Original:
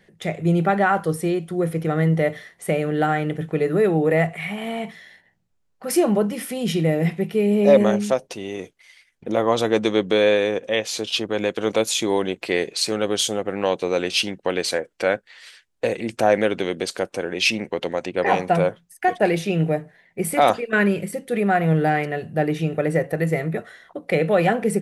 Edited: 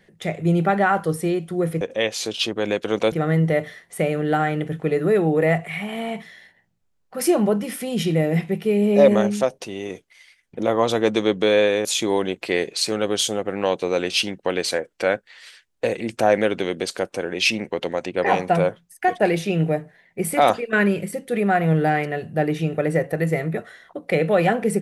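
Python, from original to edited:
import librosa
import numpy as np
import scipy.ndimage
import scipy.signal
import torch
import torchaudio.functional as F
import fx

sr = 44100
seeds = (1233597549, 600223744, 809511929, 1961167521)

y = fx.edit(x, sr, fx.move(start_s=10.54, length_s=1.31, to_s=1.81), tone=tone)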